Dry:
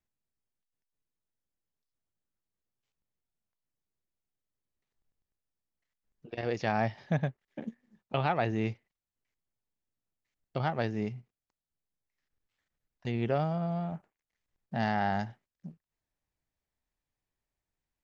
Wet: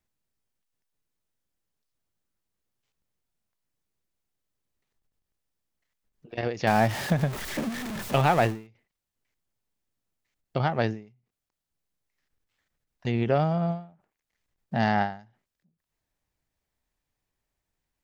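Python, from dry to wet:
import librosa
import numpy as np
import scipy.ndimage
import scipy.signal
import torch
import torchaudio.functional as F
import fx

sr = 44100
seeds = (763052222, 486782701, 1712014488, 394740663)

y = fx.zero_step(x, sr, step_db=-34.0, at=(6.67, 8.67))
y = fx.end_taper(y, sr, db_per_s=140.0)
y = y * 10.0 ** (6.0 / 20.0)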